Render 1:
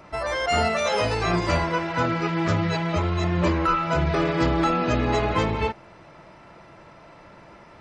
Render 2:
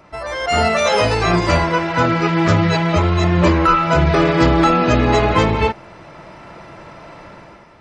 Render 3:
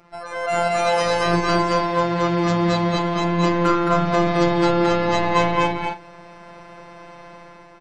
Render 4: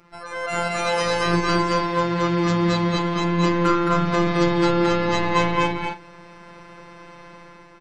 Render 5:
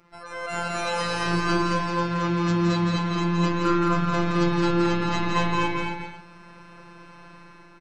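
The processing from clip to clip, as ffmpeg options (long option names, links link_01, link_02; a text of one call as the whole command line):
ffmpeg -i in.wav -af "dynaudnorm=framelen=120:gausssize=9:maxgain=10dB" out.wav
ffmpeg -i in.wav -af "afftfilt=real='hypot(re,im)*cos(PI*b)':imag='0':win_size=1024:overlap=0.75,aecho=1:1:218.7|256.6:0.891|0.251,volume=-2.5dB" out.wav
ffmpeg -i in.wav -af "equalizer=frequency=690:width_type=o:width=0.48:gain=-8.5" out.wav
ffmpeg -i in.wav -af "aecho=1:1:169.1|274.1:0.562|0.251,volume=-4.5dB" out.wav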